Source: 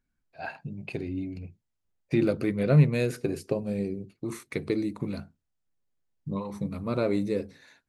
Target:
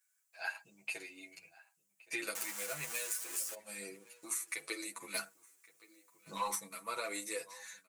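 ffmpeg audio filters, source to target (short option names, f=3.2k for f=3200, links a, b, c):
-filter_complex "[0:a]asettb=1/sr,asplit=3[a][b][c];[a]atrim=end=2.354[d];[b]atrim=start=2.35:end=3.54,asetpts=PTS-STARTPTS,afade=t=in:d=0.004:c=qsin,afade=t=out:st=1.186:d=0.004:c=qsin,aeval=exprs='val(0)+0.5*0.0335*sgn(val(0))':c=same[e];[c]atrim=start=3.536[f];[d][e]acrossfade=d=0.004:c1=hsin:c2=qsin[g];[g][f]acrossfade=d=0.004:c1=qsin:c2=hsin,highpass=1.4k,highshelf=f=5.6k:t=q:w=1.5:g=10.5,aecho=1:1:6.1:0.52,acompressor=threshold=-38dB:ratio=16,asettb=1/sr,asplit=3[h][i][j];[h]atrim=end=5.144[k];[i]atrim=start=5.14:end=6.55,asetpts=PTS-STARTPTS,afade=t=in:d=0.004:c=qsin,afade=t=out:st=1.406:d=0.004:c=qsin,aeval=exprs='0.0224*sin(PI/2*1.78*val(0)/0.0224)':c=same[l];[j]atrim=start=6.546[m];[k][l]acrossfade=d=0.004:c1=hsin:c2=qsin[n];[n][m]acrossfade=d=0.004:c1=qsin:c2=hsin,asplit=2[o][p];[p]adelay=1119,lowpass=f=4.6k:p=1,volume=-21dB,asplit=2[q][r];[r]adelay=1119,lowpass=f=4.6k:p=1,volume=0.28[s];[o][q][s]amix=inputs=3:normalize=0,asplit=2[t][u];[u]adelay=9.7,afreqshift=0.68[v];[t][v]amix=inputs=2:normalize=1,volume=7dB"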